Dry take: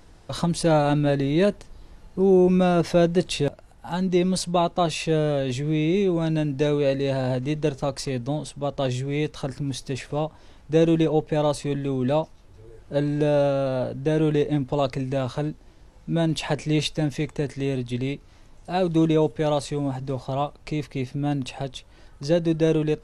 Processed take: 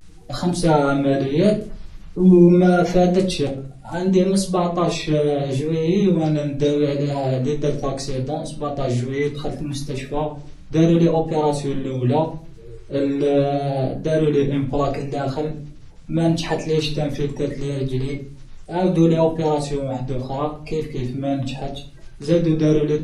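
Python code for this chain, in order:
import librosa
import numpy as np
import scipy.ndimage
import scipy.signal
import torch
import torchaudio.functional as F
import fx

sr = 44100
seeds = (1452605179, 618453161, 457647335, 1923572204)

y = fx.spec_quant(x, sr, step_db=30)
y = fx.room_shoebox(y, sr, seeds[0], volume_m3=32.0, walls='mixed', distance_m=0.53)
y = fx.vibrato(y, sr, rate_hz=0.74, depth_cents=79.0)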